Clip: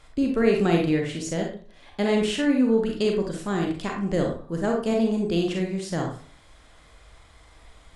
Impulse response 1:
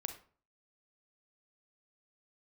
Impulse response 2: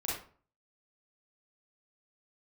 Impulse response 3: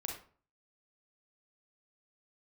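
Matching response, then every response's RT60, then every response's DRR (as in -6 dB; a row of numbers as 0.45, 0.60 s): 3; 0.45, 0.45, 0.45 s; 7.0, -6.5, 0.5 dB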